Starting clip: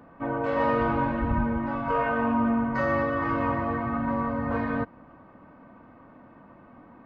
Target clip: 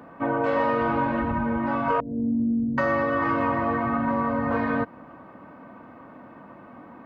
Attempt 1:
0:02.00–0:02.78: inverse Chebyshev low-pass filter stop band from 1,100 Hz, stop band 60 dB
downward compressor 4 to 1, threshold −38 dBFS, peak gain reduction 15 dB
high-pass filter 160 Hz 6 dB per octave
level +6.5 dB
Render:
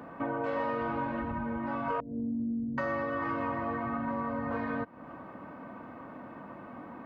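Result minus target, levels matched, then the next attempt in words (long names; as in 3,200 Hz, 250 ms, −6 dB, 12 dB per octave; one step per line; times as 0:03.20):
downward compressor: peak gain reduction +9 dB
0:02.00–0:02.78: inverse Chebyshev low-pass filter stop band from 1,100 Hz, stop band 60 dB
downward compressor 4 to 1, threshold −26 dBFS, peak gain reduction 6 dB
high-pass filter 160 Hz 6 dB per octave
level +6.5 dB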